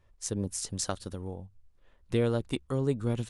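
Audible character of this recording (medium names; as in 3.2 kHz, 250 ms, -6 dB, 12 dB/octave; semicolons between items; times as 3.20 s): noise floor -64 dBFS; spectral tilt -5.5 dB/octave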